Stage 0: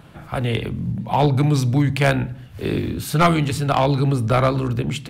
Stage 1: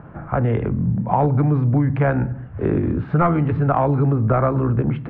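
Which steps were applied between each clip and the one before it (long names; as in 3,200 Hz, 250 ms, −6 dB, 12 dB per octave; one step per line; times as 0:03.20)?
downward compressor 4 to 1, threshold −20 dBFS, peak gain reduction 8 dB
low-pass filter 1,600 Hz 24 dB per octave
level +5.5 dB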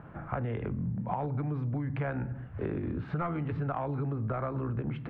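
high-shelf EQ 2,400 Hz +9.5 dB
downward compressor, threshold −21 dBFS, peak gain reduction 9 dB
level −8.5 dB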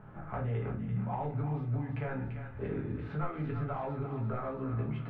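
feedback echo with a high-pass in the loop 341 ms, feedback 67%, high-pass 1,100 Hz, level −6.5 dB
convolution reverb RT60 0.30 s, pre-delay 5 ms, DRR −2.5 dB
level −7.5 dB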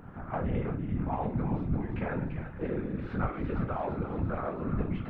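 random phases in short frames
level +3 dB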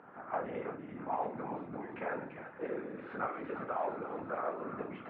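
band-pass filter 440–2,300 Hz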